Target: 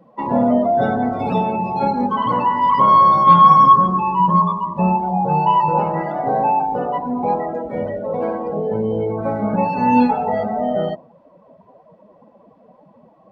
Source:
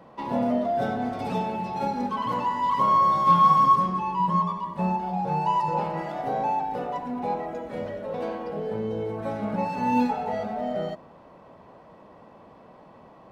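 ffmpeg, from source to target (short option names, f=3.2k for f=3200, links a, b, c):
-af "acontrast=38,afftdn=nr=19:nf=-34,volume=3.5dB"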